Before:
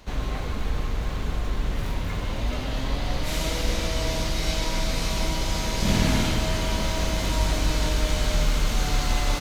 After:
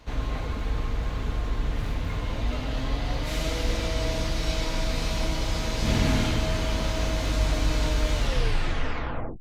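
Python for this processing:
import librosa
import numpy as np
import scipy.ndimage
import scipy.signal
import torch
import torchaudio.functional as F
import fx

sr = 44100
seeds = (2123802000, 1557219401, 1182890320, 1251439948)

y = fx.tape_stop_end(x, sr, length_s=1.26)
y = fx.high_shelf(y, sr, hz=6600.0, db=-7.5)
y = fx.notch_comb(y, sr, f0_hz=190.0)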